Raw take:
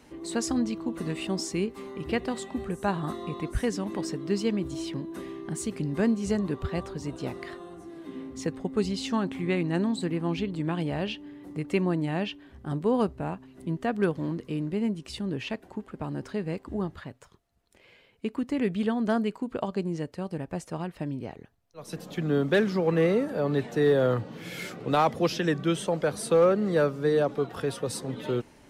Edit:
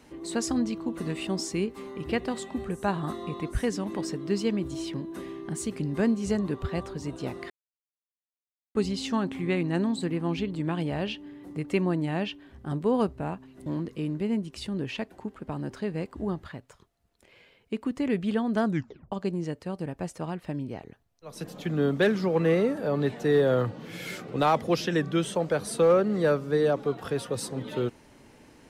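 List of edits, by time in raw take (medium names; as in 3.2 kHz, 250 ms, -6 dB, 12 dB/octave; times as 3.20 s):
7.50–8.75 s: mute
13.66–14.18 s: delete
19.17 s: tape stop 0.47 s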